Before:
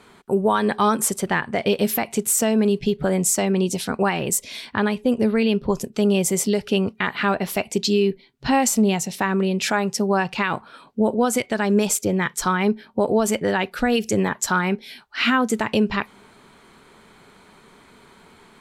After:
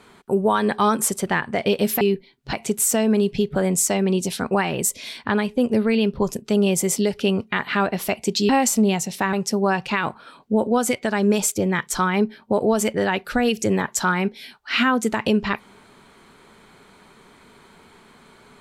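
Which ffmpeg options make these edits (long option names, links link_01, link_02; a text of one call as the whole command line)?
ffmpeg -i in.wav -filter_complex "[0:a]asplit=5[link_01][link_02][link_03][link_04][link_05];[link_01]atrim=end=2.012[link_06];[link_02]atrim=start=7.968:end=8.492[link_07];[link_03]atrim=start=2.008:end=7.972[link_08];[link_04]atrim=start=8.488:end=9.332[link_09];[link_05]atrim=start=9.798[link_10];[link_06][link_07]acrossfade=duration=0.004:curve1=hsin:curve2=hsin[link_11];[link_11][link_08]acrossfade=duration=0.004:curve1=hsin:curve2=hsin[link_12];[link_12][link_09]acrossfade=duration=0.004:curve1=hsin:curve2=hsin[link_13];[link_13][link_10]acrossfade=duration=0.004:curve1=hsin:curve2=hsin" out.wav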